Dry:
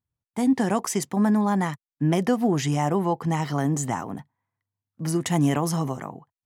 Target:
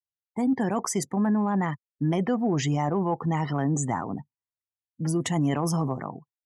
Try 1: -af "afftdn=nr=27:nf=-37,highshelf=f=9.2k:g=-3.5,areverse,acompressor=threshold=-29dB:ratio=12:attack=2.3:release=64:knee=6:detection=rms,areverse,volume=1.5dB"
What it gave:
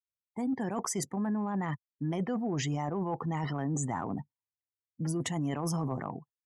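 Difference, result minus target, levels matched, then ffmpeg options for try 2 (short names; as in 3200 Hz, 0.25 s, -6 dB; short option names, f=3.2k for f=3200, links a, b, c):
compressor: peak gain reduction +8 dB
-af "afftdn=nr=27:nf=-37,highshelf=f=9.2k:g=-3.5,areverse,acompressor=threshold=-20dB:ratio=12:attack=2.3:release=64:knee=6:detection=rms,areverse,volume=1.5dB"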